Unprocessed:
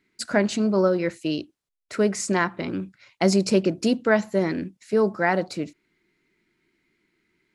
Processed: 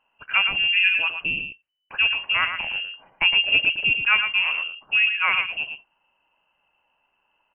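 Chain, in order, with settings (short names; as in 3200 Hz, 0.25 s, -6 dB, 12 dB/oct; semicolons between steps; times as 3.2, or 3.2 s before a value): on a send: echo 0.112 s -7.5 dB; on the sum: inverted band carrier 3000 Hz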